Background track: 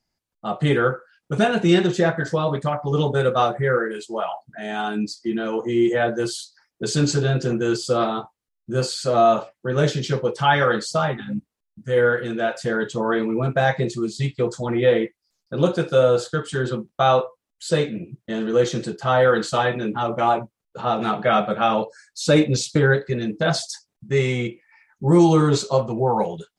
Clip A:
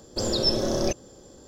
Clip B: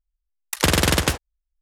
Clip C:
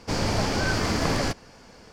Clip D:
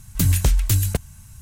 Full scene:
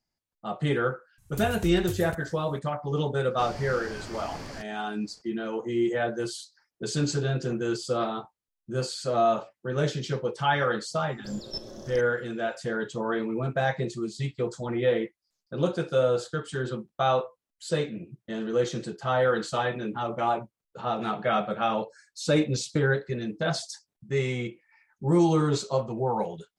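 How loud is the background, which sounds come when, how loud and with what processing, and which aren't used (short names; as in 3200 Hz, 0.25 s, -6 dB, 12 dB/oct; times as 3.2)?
background track -7 dB
1.18 add D -17.5 dB
3.3 add C -15 dB
11.08 add A -10 dB + level quantiser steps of 11 dB
not used: B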